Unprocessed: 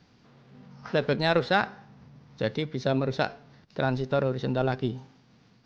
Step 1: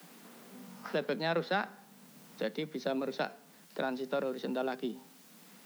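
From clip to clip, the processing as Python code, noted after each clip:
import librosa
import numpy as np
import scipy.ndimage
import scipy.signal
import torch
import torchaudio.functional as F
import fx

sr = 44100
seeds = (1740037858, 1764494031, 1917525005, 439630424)

y = fx.dmg_noise_colour(x, sr, seeds[0], colour='white', level_db=-58.0)
y = scipy.signal.sosfilt(scipy.signal.butter(16, 160.0, 'highpass', fs=sr, output='sos'), y)
y = fx.band_squash(y, sr, depth_pct=40)
y = F.gain(torch.from_numpy(y), -7.0).numpy()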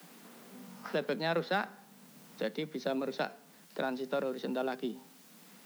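y = fx.block_float(x, sr, bits=7)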